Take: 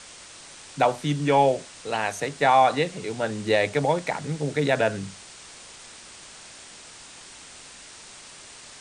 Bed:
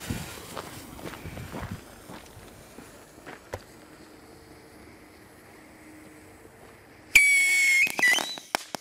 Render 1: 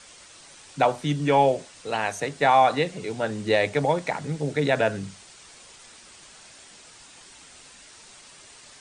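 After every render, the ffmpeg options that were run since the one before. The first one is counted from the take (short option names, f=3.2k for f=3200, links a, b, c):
-af "afftdn=nr=6:nf=-46"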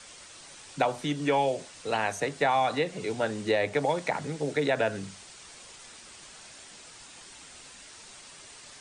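-filter_complex "[0:a]acrossover=split=250|2200[a][b][c];[a]acompressor=threshold=-40dB:ratio=4[d];[b]acompressor=threshold=-23dB:ratio=4[e];[c]acompressor=threshold=-36dB:ratio=4[f];[d][e][f]amix=inputs=3:normalize=0"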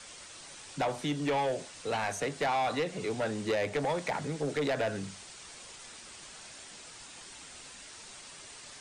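-af "asoftclip=type=tanh:threshold=-25dB"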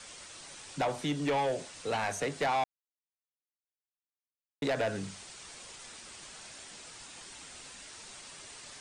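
-filter_complex "[0:a]asplit=3[a][b][c];[a]atrim=end=2.64,asetpts=PTS-STARTPTS,afade=t=out:st=2.636:d=0.004:c=hsin[d];[b]atrim=start=2.64:end=4.62,asetpts=PTS-STARTPTS,volume=0[e];[c]atrim=start=4.62,asetpts=PTS-STARTPTS,afade=t=in:d=0.004:c=hsin[f];[d][e][f]concat=n=3:v=0:a=1"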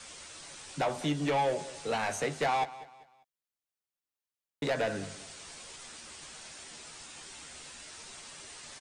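-filter_complex "[0:a]asplit=2[a][b];[b]adelay=13,volume=-7.5dB[c];[a][c]amix=inputs=2:normalize=0,aecho=1:1:197|394|591:0.141|0.0494|0.0173"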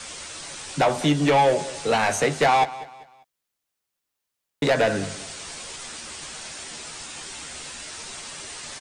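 -af "volume=10.5dB"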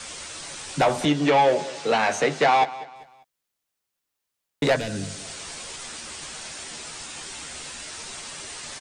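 -filter_complex "[0:a]asettb=1/sr,asplit=3[a][b][c];[a]atrim=end=1.054[d];[b]atrim=start=1.05:end=2.96,asetpts=PTS-STARTPTS,afade=t=in:d=0.004:c=qsin,afade=t=out:st=1.906:d=0.004:c=qsin,highpass=170,lowpass=6.1k[e];[c]atrim=start=2.956[f];[d][e]acrossfade=d=0.004:c1=hsin:c2=qsin[g];[g][f]acrossfade=d=0.004:c1=qsin:c2=hsin,asettb=1/sr,asplit=3[h][i][j];[h]atrim=end=4.764[k];[i]atrim=start=4.76:end=5.25,asetpts=PTS-STARTPTS,afade=t=in:d=0.004:c=qsin,afade=t=out:st=0.486:d=0.004:c=qsin,acrossover=split=270|3000[l][m][n];[m]acompressor=threshold=-45dB:ratio=2:attack=3.2:release=140:knee=2.83:detection=peak[o];[l][o][n]amix=inputs=3:normalize=0[p];[j]atrim=start=5.246[q];[k][p]acrossfade=d=0.004:c1=hsin:c2=qsin[r];[r][q]acrossfade=d=0.004:c1=qsin:c2=hsin"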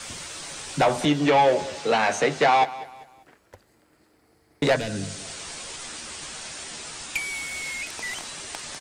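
-filter_complex "[1:a]volume=-12.5dB[a];[0:a][a]amix=inputs=2:normalize=0"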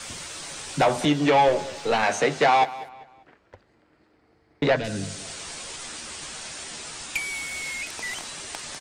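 -filter_complex "[0:a]asettb=1/sr,asplit=3[a][b][c];[a]atrim=end=1.484[d];[b]atrim=start=1.48:end=2.03,asetpts=PTS-STARTPTS,afade=t=in:d=0.004:c=qsin,afade=t=out:st=0.546:d=0.004:c=qsin,aeval=exprs='if(lt(val(0),0),0.708*val(0),val(0))':c=same[e];[c]atrim=start=2.026[f];[d][e]acrossfade=d=0.004:c1=hsin:c2=qsin[g];[g][f]acrossfade=d=0.004:c1=qsin:c2=hsin,asplit=3[h][i][j];[h]afade=t=out:st=2.88:d=0.02[k];[i]lowpass=3.7k,afade=t=in:st=2.88:d=0.02,afade=t=out:st=4.83:d=0.02[l];[j]afade=t=in:st=4.83:d=0.02[m];[k][l][m]amix=inputs=3:normalize=0"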